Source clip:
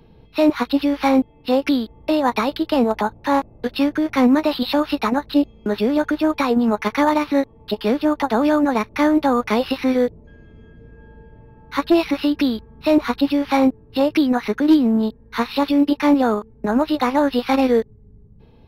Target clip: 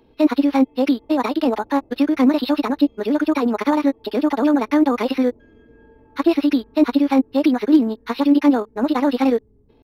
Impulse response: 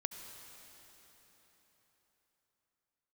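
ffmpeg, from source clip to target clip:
-af "lowshelf=f=220:t=q:w=3:g=-6,atempo=1.9,volume=0.75"

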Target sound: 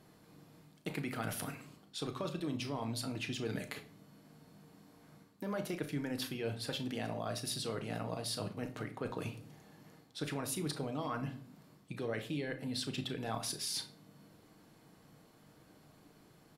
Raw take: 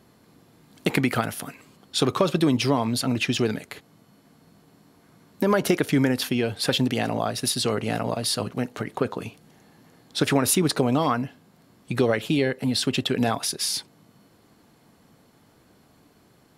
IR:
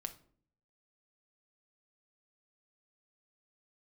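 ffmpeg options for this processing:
-filter_complex "[0:a]areverse,acompressor=threshold=0.0282:ratio=6,areverse,asplit=2[s0][s1];[s1]adelay=35,volume=0.237[s2];[s0][s2]amix=inputs=2:normalize=0[s3];[1:a]atrim=start_sample=2205,asetrate=39249,aresample=44100[s4];[s3][s4]afir=irnorm=-1:irlink=0,volume=0.708"

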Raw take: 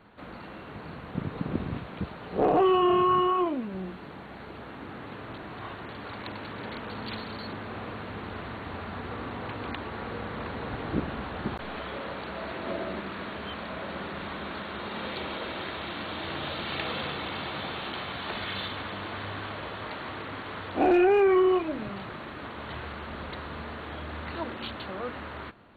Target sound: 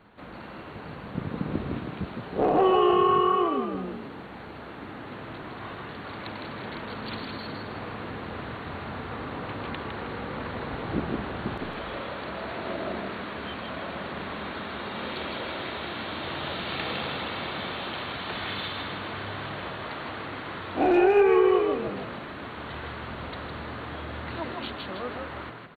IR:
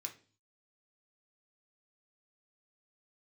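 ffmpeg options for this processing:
-filter_complex "[0:a]asplit=6[s0][s1][s2][s3][s4][s5];[s1]adelay=158,afreqshift=43,volume=0.596[s6];[s2]adelay=316,afreqshift=86,volume=0.214[s7];[s3]adelay=474,afreqshift=129,volume=0.0776[s8];[s4]adelay=632,afreqshift=172,volume=0.0279[s9];[s5]adelay=790,afreqshift=215,volume=0.01[s10];[s0][s6][s7][s8][s9][s10]amix=inputs=6:normalize=0"

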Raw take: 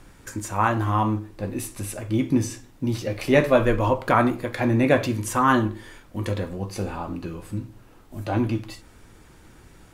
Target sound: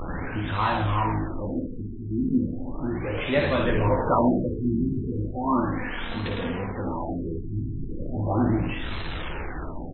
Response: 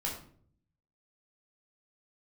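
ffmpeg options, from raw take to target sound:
-filter_complex "[0:a]aeval=exprs='val(0)+0.5*0.106*sgn(val(0))':c=same,asplit=2[s0][s1];[s1]asplit=4[s2][s3][s4][s5];[s2]adelay=81,afreqshift=-57,volume=0.473[s6];[s3]adelay=162,afreqshift=-114,volume=0.176[s7];[s4]adelay=243,afreqshift=-171,volume=0.0646[s8];[s5]adelay=324,afreqshift=-228,volume=0.024[s9];[s6][s7][s8][s9]amix=inputs=4:normalize=0[s10];[s0][s10]amix=inputs=2:normalize=0,aphaser=in_gain=1:out_gain=1:delay=4.4:decay=0.35:speed=0.24:type=sinusoidal,aemphasis=mode=production:type=50fm,asplit=2[s11][s12];[s12]aecho=0:1:12|57:0.376|0.531[s13];[s11][s13]amix=inputs=2:normalize=0,afftfilt=real='re*lt(b*sr/1024,390*pow(4200/390,0.5+0.5*sin(2*PI*0.36*pts/sr)))':imag='im*lt(b*sr/1024,390*pow(4200/390,0.5+0.5*sin(2*PI*0.36*pts/sr)))':win_size=1024:overlap=0.75,volume=0.355"

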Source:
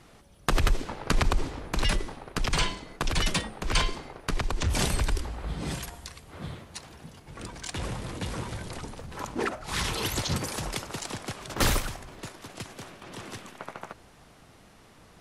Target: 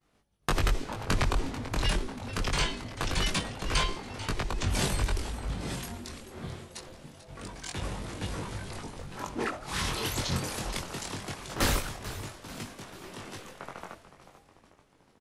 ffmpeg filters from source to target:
-filter_complex "[0:a]agate=range=0.0224:threshold=0.00631:ratio=3:detection=peak,flanger=delay=20:depth=2.9:speed=0.24,asplit=7[s0][s1][s2][s3][s4][s5][s6];[s1]adelay=440,afreqshift=-140,volume=0.211[s7];[s2]adelay=880,afreqshift=-280,volume=0.12[s8];[s3]adelay=1320,afreqshift=-420,volume=0.0684[s9];[s4]adelay=1760,afreqshift=-560,volume=0.0394[s10];[s5]adelay=2200,afreqshift=-700,volume=0.0224[s11];[s6]adelay=2640,afreqshift=-840,volume=0.0127[s12];[s0][s7][s8][s9][s10][s11][s12]amix=inputs=7:normalize=0,volume=1.12"

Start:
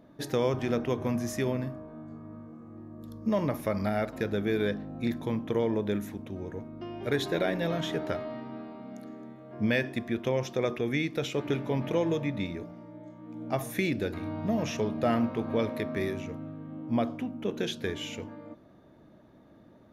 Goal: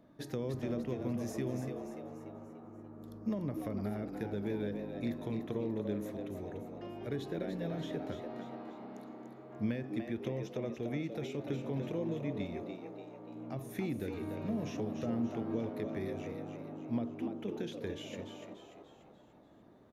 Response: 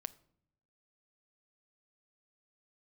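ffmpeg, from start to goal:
-filter_complex "[0:a]acrossover=split=410[s0][s1];[s1]acompressor=threshold=0.01:ratio=10[s2];[s0][s2]amix=inputs=2:normalize=0,asplit=7[s3][s4][s5][s6][s7][s8][s9];[s4]adelay=292,afreqshift=96,volume=0.447[s10];[s5]adelay=584,afreqshift=192,volume=0.209[s11];[s6]adelay=876,afreqshift=288,volume=0.0989[s12];[s7]adelay=1168,afreqshift=384,volume=0.0462[s13];[s8]adelay=1460,afreqshift=480,volume=0.0219[s14];[s9]adelay=1752,afreqshift=576,volume=0.0102[s15];[s3][s10][s11][s12][s13][s14][s15]amix=inputs=7:normalize=0,volume=0.501"

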